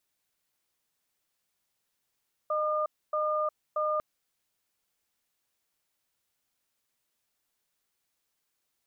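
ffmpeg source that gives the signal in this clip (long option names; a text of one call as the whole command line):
ffmpeg -f lavfi -i "aevalsrc='0.0376*(sin(2*PI*612*t)+sin(2*PI*1210*t))*clip(min(mod(t,0.63),0.36-mod(t,0.63))/0.005,0,1)':duration=1.5:sample_rate=44100" out.wav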